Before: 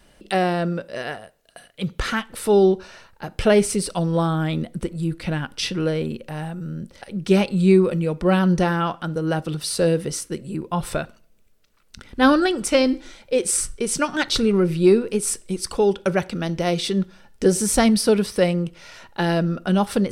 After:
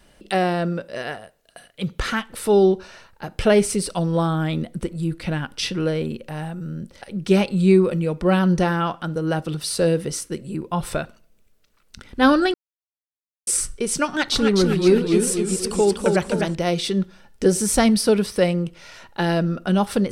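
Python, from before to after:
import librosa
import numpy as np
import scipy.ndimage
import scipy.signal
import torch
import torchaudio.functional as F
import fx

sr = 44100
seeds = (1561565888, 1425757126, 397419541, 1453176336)

y = fx.echo_warbled(x, sr, ms=254, feedback_pct=53, rate_hz=2.8, cents=142, wet_db=-4.5, at=(14.07, 16.55))
y = fx.edit(y, sr, fx.silence(start_s=12.54, length_s=0.93), tone=tone)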